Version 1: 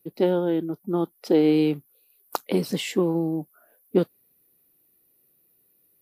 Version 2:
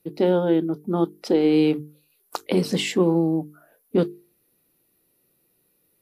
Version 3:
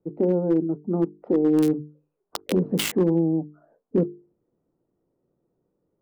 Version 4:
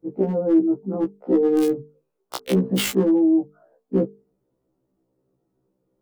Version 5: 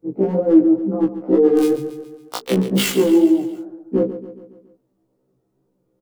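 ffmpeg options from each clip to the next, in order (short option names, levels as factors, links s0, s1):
-af "lowpass=9700,alimiter=limit=0.188:level=0:latency=1:release=15,bandreject=f=50:t=h:w=6,bandreject=f=100:t=h:w=6,bandreject=f=150:t=h:w=6,bandreject=f=200:t=h:w=6,bandreject=f=250:t=h:w=6,bandreject=f=300:t=h:w=6,bandreject=f=350:t=h:w=6,bandreject=f=400:t=h:w=6,bandreject=f=450:t=h:w=6,volume=1.68"
-filter_complex "[0:a]acrossover=split=530|1100[s0][s1][s2];[s0]volume=5.01,asoftclip=hard,volume=0.2[s3];[s1]acompressor=threshold=0.0112:ratio=5[s4];[s2]acrusher=bits=3:mix=0:aa=0.000001[s5];[s3][s4][s5]amix=inputs=3:normalize=0"
-af "afftfilt=real='re*1.73*eq(mod(b,3),0)':imag='im*1.73*eq(mod(b,3),0)':win_size=2048:overlap=0.75,volume=1.68"
-filter_complex "[0:a]flanger=delay=19.5:depth=5.9:speed=2.1,asplit=2[s0][s1];[s1]aecho=0:1:139|278|417|556|695:0.237|0.126|0.0666|0.0353|0.0187[s2];[s0][s2]amix=inputs=2:normalize=0,volume=2.11"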